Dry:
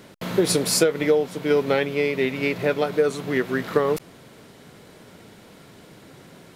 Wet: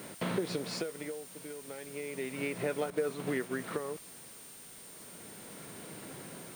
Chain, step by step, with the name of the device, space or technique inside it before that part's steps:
medium wave at night (band-pass filter 120–3,600 Hz; downward compressor 5 to 1, threshold −30 dBFS, peak gain reduction 15 dB; amplitude tremolo 0.33 Hz, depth 80%; steady tone 9,000 Hz −52 dBFS; white noise bed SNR 15 dB)
0:02.90–0:03.56: downward expander −35 dBFS

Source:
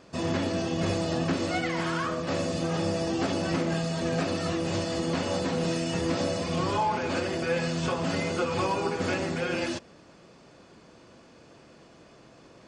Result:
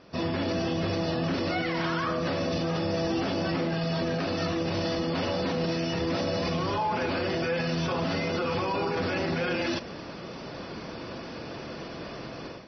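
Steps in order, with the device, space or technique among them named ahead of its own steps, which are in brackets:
low-bitrate web radio (automatic gain control gain up to 15 dB; brickwall limiter −20.5 dBFS, peak gain reduction 17.5 dB; MP3 24 kbit/s 24,000 Hz)

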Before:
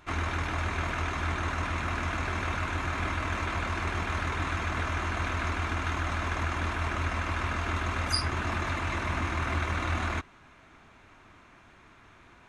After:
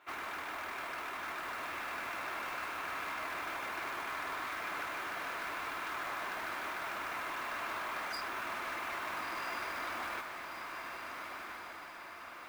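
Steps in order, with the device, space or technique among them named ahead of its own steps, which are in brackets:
carbon microphone (band-pass filter 480–3,400 Hz; soft clipping −31.5 dBFS, distortion −13 dB; noise that follows the level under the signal 17 dB)
feedback delay with all-pass diffusion 1,406 ms, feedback 53%, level −4.5 dB
level −4 dB

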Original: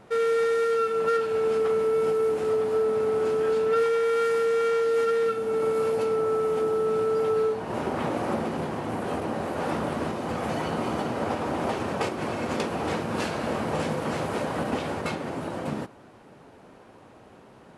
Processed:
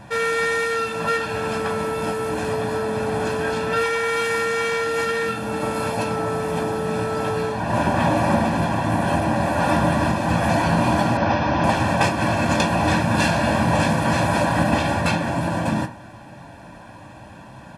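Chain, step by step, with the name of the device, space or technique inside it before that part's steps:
parametric band 770 Hz −4.5 dB 0.36 octaves
microphone above a desk (comb filter 1.2 ms, depth 79%; convolution reverb RT60 0.35 s, pre-delay 4 ms, DRR 5.5 dB)
0:11.17–0:11.64: elliptic low-pass filter 5,900 Hz, stop band 40 dB
level +8 dB

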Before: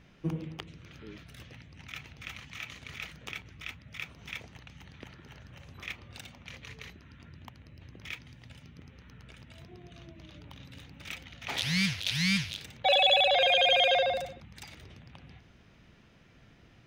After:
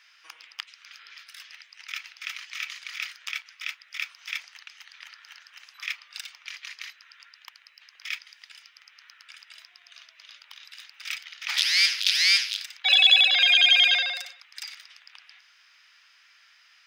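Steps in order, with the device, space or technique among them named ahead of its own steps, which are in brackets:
headphones lying on a table (high-pass filter 1,300 Hz 24 dB per octave; parametric band 5,000 Hz +10 dB 0.25 octaves)
level +7.5 dB

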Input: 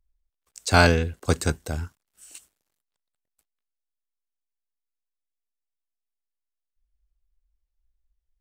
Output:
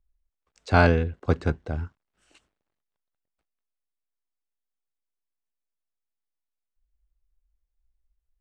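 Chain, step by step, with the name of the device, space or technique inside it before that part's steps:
0:01.25–0:01.79: parametric band 13,000 Hz −11.5 dB 1.1 octaves
phone in a pocket (low-pass filter 3,700 Hz 12 dB per octave; high-shelf EQ 2,100 Hz −8.5 dB)

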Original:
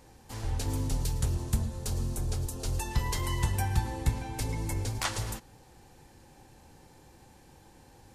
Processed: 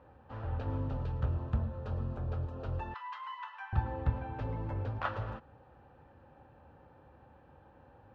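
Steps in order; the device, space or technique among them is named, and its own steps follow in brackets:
bass cabinet (loudspeaker in its box 63–2,400 Hz, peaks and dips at 71 Hz +5 dB, 180 Hz −4 dB, 360 Hz −5 dB, 570 Hz +7 dB, 1,300 Hz +7 dB, 2,100 Hz −9 dB)
notch filter 2,200 Hz, Q 21
0:02.94–0:03.73: Chebyshev high-pass filter 980 Hz, order 4
level −2.5 dB

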